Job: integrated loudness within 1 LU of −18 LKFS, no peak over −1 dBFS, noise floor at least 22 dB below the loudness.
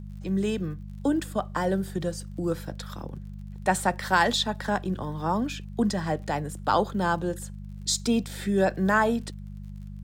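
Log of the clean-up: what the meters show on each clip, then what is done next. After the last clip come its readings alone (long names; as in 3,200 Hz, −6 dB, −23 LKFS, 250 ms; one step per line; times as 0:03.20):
crackle rate 45 per second; mains hum 50 Hz; hum harmonics up to 200 Hz; level of the hum −36 dBFS; integrated loudness −27.0 LKFS; sample peak −8.5 dBFS; target loudness −18.0 LKFS
→ click removal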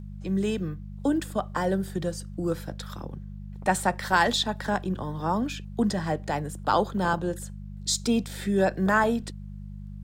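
crackle rate 0.40 per second; mains hum 50 Hz; hum harmonics up to 200 Hz; level of the hum −37 dBFS
→ hum removal 50 Hz, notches 4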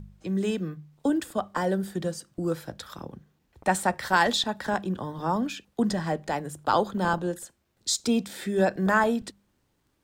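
mains hum none found; integrated loudness −27.5 LKFS; sample peak −9.0 dBFS; target loudness −18.0 LKFS
→ level +9.5 dB
brickwall limiter −1 dBFS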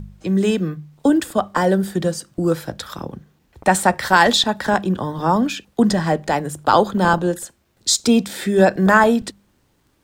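integrated loudness −18.0 LKFS; sample peak −1.0 dBFS; background noise floor −62 dBFS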